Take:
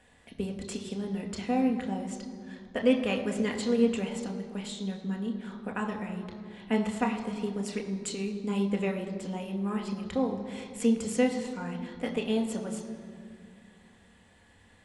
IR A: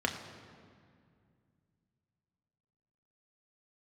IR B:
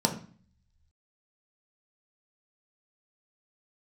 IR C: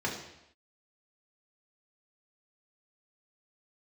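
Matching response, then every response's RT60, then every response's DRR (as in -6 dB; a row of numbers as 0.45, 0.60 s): A; 2.2 s, 0.45 s, not exponential; 2.0, 2.0, -3.5 dB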